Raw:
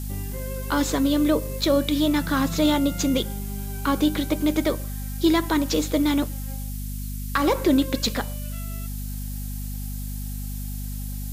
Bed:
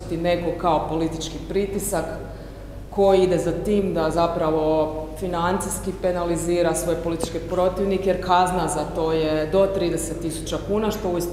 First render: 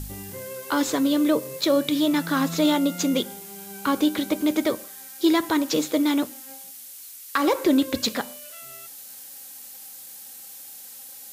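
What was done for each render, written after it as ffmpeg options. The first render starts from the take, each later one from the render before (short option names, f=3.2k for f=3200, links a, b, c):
-af "bandreject=f=50:t=h:w=4,bandreject=f=100:t=h:w=4,bandreject=f=150:t=h:w=4,bandreject=f=200:t=h:w=4,bandreject=f=250:t=h:w=4"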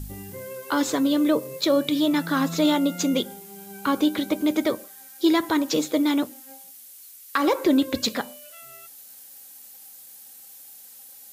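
-af "afftdn=nr=6:nf=-42"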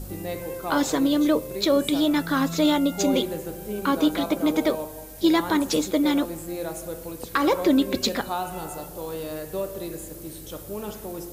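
-filter_complex "[1:a]volume=-11.5dB[a];[0:a][a]amix=inputs=2:normalize=0"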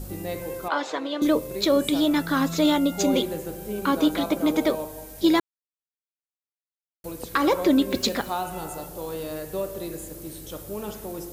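-filter_complex "[0:a]asettb=1/sr,asplit=3[a][b][c];[a]atrim=end=0.684[d];[b]atrim=start=0.68:end=1.22,asetpts=PTS-STARTPTS,afade=t=in:d=0.004:c=qsin,afade=t=out:st=0.536:d=0.004:c=qsin,highpass=540,lowpass=3.5k[e];[c]atrim=start=1.216[f];[d][e]acrossfade=d=0.004:c1=hsin:c2=qsin[g];[g][f]acrossfade=d=0.004:c1=qsin:c2=hsin,asettb=1/sr,asplit=3[h][i][j];[h]atrim=end=7.904[k];[i]atrim=start=7.9:end=8.41,asetpts=PTS-STARTPTS,afade=t=in:d=0.004:c=qsin,afade=t=out:st=0.506:d=0.004:c=qsin,aeval=exprs='val(0)*gte(abs(val(0)),0.0106)':c=same[l];[j]atrim=start=8.406[m];[k][l]acrossfade=d=0.004:c1=hsin:c2=qsin[n];[n][m]acrossfade=d=0.004:c1=qsin:c2=hsin,asplit=3[o][p][q];[o]atrim=end=5.4,asetpts=PTS-STARTPTS,afade=t=out:st=5.396:d=0.004:c=hsin[r];[p]atrim=start=5.4:end=7.04,asetpts=PTS-STARTPTS,volume=0[s];[q]atrim=start=7.04,asetpts=PTS-STARTPTS,afade=t=in:d=0.004:c=hsin[t];[r][s][t]concat=n=3:v=0:a=1"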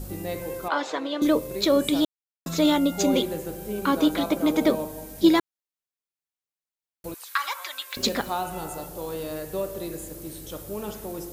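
-filter_complex "[0:a]asettb=1/sr,asplit=3[a][b][c];[a]atrim=end=4.614[d];[b]atrim=start=4.61:end=5.29,asetpts=PTS-STARTPTS,afade=t=in:d=0.004:c=qsin,afade=t=out:st=0.676:d=0.004:c=qsin,equalizer=f=210:t=o:w=1:g=8[e];[c]atrim=start=5.286[f];[d][e]acrossfade=d=0.004:c1=hsin:c2=qsin[g];[g][f]acrossfade=d=0.004:c1=qsin:c2=hsin,asettb=1/sr,asplit=3[h][i][j];[h]atrim=end=7.144[k];[i]atrim=start=7.14:end=7.97,asetpts=PTS-STARTPTS,afade=t=in:d=0.004:c=qsin,afade=t=out:st=0.826:d=0.004:c=qsin,highpass=f=1.1k:w=0.5412,highpass=f=1.1k:w=1.3066[l];[j]atrim=start=7.966[m];[k][l]acrossfade=d=0.004:c1=hsin:c2=qsin[n];[n][m]acrossfade=d=0.004:c1=qsin:c2=hsin,asplit=3[o][p][q];[o]atrim=end=2.05,asetpts=PTS-STARTPTS,afade=t=out:st=2.046:d=0.004:c=hsin[r];[p]atrim=start=2.05:end=2.46,asetpts=PTS-STARTPTS,volume=0[s];[q]atrim=start=2.46,asetpts=PTS-STARTPTS,afade=t=in:d=0.004:c=hsin[t];[r][s][t]concat=n=3:v=0:a=1"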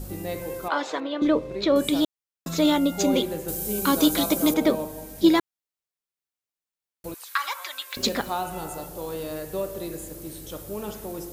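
-filter_complex "[0:a]asettb=1/sr,asplit=3[a][b][c];[a]atrim=end=1.004[d];[b]atrim=start=1:end=1.76,asetpts=PTS-STARTPTS,afade=t=in:d=0.004:c=qsin,afade=t=out:st=0.756:d=0.004:c=qsin,lowpass=3.4k[e];[c]atrim=start=1.756[f];[d][e]acrossfade=d=0.004:c1=hsin:c2=qsin[g];[g][f]acrossfade=d=0.004:c1=qsin:c2=hsin,asettb=1/sr,asplit=3[h][i][j];[h]atrim=end=3.484[k];[i]atrim=start=3.48:end=4.54,asetpts=PTS-STARTPTS,afade=t=in:d=0.004:c=qsin,afade=t=out:st=1.056:d=0.004:c=qsin,bass=f=250:g=3,treble=f=4k:g=14[l];[j]atrim=start=4.536[m];[k][l]acrossfade=d=0.004:c1=hsin:c2=qsin[n];[n][m]acrossfade=d=0.004:c1=qsin:c2=hsin"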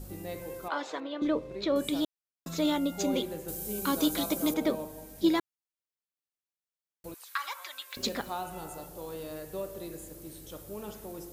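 -af "volume=-7.5dB"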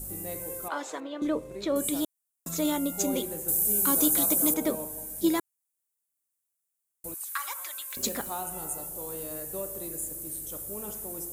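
-af "highshelf=f=6.3k:t=q:w=1.5:g=12.5"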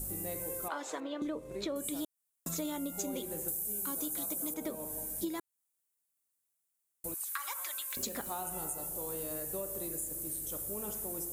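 -af "acompressor=threshold=-34dB:ratio=8"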